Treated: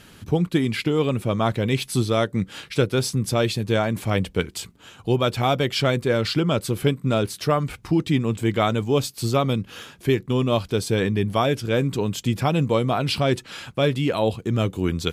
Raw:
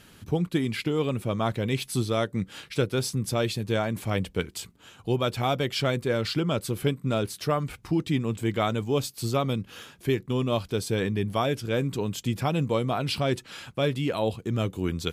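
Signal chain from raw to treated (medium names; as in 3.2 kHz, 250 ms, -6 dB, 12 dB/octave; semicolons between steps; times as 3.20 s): treble shelf 11 kHz -4 dB; trim +5 dB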